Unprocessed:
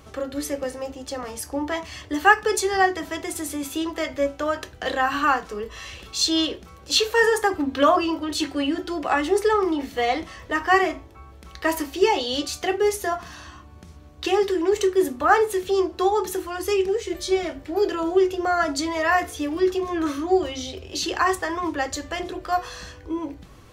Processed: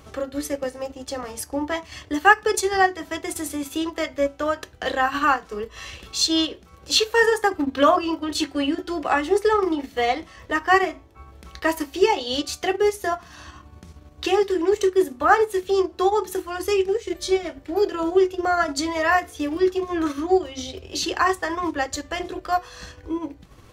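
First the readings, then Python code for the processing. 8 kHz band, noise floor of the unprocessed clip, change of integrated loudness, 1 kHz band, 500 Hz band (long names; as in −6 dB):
0.0 dB, −45 dBFS, +0.5 dB, +0.5 dB, +0.5 dB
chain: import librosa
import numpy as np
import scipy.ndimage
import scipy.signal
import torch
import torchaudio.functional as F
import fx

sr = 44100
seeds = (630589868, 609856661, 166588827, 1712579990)

y = fx.transient(x, sr, attack_db=0, sustain_db=-7)
y = y * librosa.db_to_amplitude(1.0)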